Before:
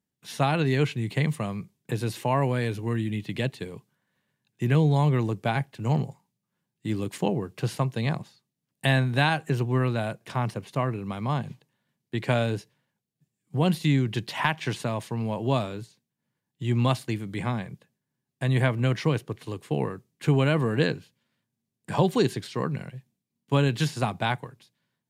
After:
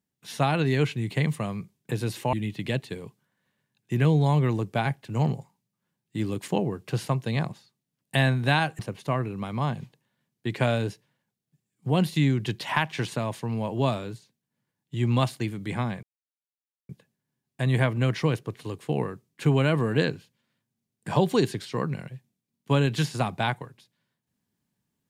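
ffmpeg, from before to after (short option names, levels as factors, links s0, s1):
-filter_complex "[0:a]asplit=4[s0][s1][s2][s3];[s0]atrim=end=2.332[s4];[s1]atrim=start=3.028:end=9.492[s5];[s2]atrim=start=10.468:end=17.71,asetpts=PTS-STARTPTS,afade=t=out:st=7.238:d=0.004:c=hsin,apad=pad_dur=0.86[s6];[s3]atrim=start=17.71,asetpts=PTS-STARTPTS,afade=t=in:d=0.004:c=hsin[s7];[s4][s5]acrossfade=d=0.004:c1=hsin:c2=hsin[s8];[s6][s7]concat=n=2:v=0:a=1[s9];[s8][s9]acrossfade=d=0.004:c1=hsin:c2=hsin"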